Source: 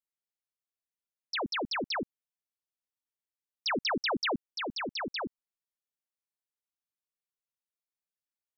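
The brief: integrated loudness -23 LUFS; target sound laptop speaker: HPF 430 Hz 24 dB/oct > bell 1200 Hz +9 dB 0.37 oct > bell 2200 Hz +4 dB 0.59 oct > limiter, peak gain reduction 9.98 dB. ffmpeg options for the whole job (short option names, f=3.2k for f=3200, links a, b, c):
-af "highpass=f=430:w=0.5412,highpass=f=430:w=1.3066,equalizer=f=1.2k:t=o:w=0.37:g=9,equalizer=f=2.2k:t=o:w=0.59:g=4,volume=11.5dB,alimiter=limit=-16.5dB:level=0:latency=1"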